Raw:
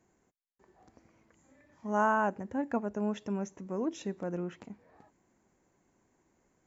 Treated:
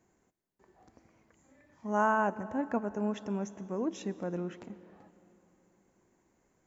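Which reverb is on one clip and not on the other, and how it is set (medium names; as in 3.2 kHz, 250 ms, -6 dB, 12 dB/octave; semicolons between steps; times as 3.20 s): algorithmic reverb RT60 3.4 s, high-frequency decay 0.7×, pre-delay 90 ms, DRR 16.5 dB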